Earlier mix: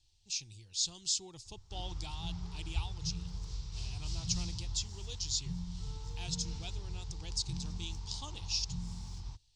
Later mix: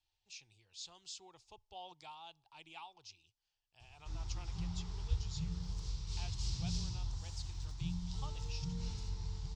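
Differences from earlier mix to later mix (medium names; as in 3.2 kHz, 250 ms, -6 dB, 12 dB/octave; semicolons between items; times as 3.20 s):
speech: add three-band isolator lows -18 dB, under 510 Hz, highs -18 dB, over 2.4 kHz; background: entry +2.35 s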